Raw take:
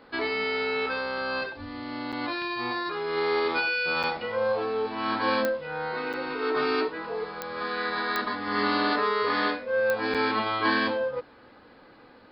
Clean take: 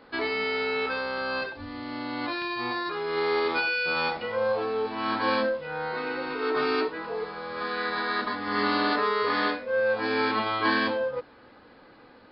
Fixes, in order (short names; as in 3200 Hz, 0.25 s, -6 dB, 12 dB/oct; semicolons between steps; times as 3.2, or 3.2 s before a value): de-click; interpolate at 2.12/4.03/6.13/10.14, 6.9 ms